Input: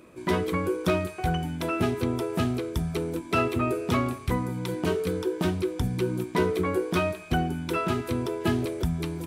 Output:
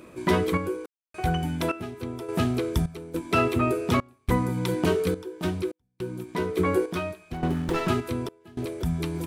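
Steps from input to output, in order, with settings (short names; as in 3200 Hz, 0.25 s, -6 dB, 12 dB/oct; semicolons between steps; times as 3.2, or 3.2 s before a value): random-step tremolo, depth 100%; 7.33–7.88 running maximum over 17 samples; gain +4.5 dB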